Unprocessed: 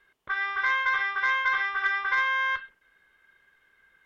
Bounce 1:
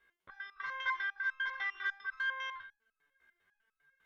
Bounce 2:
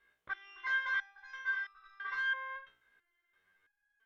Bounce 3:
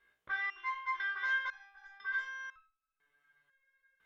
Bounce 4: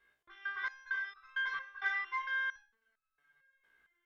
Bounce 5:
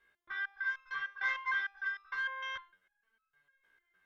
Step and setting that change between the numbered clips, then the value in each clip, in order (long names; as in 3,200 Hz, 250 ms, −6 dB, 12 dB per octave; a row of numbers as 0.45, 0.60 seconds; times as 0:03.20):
step-sequenced resonator, speed: 10, 3, 2, 4.4, 6.6 Hertz